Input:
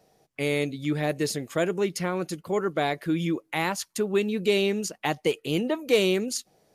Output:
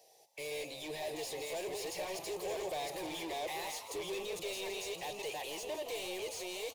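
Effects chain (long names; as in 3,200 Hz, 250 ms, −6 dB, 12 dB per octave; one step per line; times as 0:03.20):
delay that plays each chunk backwards 524 ms, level −4 dB
source passing by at 0:02.93, 9 m/s, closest 11 metres
first-order pre-emphasis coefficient 0.8
mid-hump overdrive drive 35 dB, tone 2,300 Hz, clips at −24.5 dBFS
low-shelf EQ 140 Hz −6.5 dB
phaser with its sweep stopped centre 560 Hz, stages 4
echo with shifted repeats 165 ms, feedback 64%, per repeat +84 Hz, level −11 dB
level −4 dB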